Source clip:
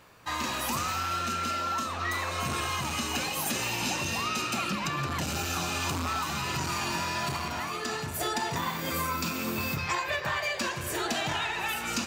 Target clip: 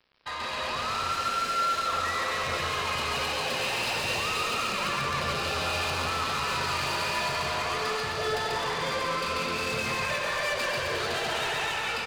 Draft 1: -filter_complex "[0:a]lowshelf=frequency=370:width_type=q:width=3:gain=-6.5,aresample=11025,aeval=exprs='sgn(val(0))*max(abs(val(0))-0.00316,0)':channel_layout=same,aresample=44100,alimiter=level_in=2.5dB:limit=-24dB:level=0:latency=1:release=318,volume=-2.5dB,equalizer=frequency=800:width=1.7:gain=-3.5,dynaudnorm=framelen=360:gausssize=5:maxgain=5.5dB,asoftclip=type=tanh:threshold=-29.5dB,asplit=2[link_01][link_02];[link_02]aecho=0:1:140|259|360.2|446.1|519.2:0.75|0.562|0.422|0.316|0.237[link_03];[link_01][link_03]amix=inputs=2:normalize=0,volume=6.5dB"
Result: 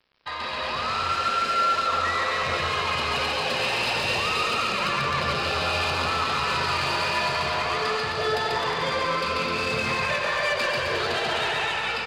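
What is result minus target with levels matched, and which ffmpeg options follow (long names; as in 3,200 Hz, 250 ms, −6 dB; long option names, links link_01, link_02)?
soft clipping: distortion −6 dB
-filter_complex "[0:a]lowshelf=frequency=370:width_type=q:width=3:gain=-6.5,aresample=11025,aeval=exprs='sgn(val(0))*max(abs(val(0))-0.00316,0)':channel_layout=same,aresample=44100,alimiter=level_in=2.5dB:limit=-24dB:level=0:latency=1:release=318,volume=-2.5dB,equalizer=frequency=800:width=1.7:gain=-3.5,dynaudnorm=framelen=360:gausssize=5:maxgain=5.5dB,asoftclip=type=tanh:threshold=-36.5dB,asplit=2[link_01][link_02];[link_02]aecho=0:1:140|259|360.2|446.1|519.2:0.75|0.562|0.422|0.316|0.237[link_03];[link_01][link_03]amix=inputs=2:normalize=0,volume=6.5dB"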